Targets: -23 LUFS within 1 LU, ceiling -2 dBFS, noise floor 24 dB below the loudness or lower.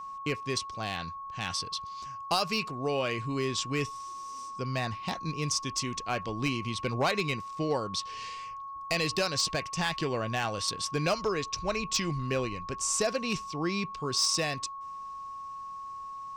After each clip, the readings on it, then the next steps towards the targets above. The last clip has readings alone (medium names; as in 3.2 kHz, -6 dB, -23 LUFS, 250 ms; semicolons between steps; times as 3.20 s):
clipped samples 0.2%; clipping level -20.0 dBFS; steady tone 1.1 kHz; tone level -38 dBFS; loudness -31.5 LUFS; peak level -20.0 dBFS; loudness target -23.0 LUFS
-> clip repair -20 dBFS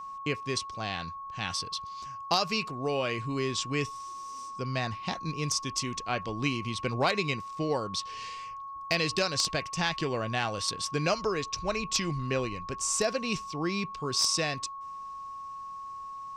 clipped samples 0.0%; steady tone 1.1 kHz; tone level -38 dBFS
-> band-stop 1.1 kHz, Q 30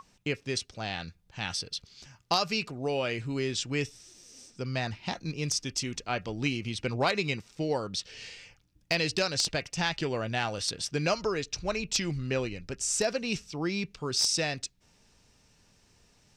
steady tone not found; loudness -31.0 LUFS; peak level -11.0 dBFS; loudness target -23.0 LUFS
-> trim +8 dB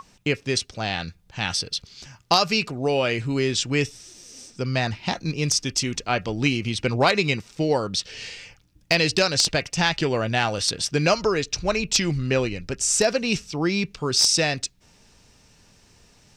loudness -23.0 LUFS; peak level -3.0 dBFS; noise floor -57 dBFS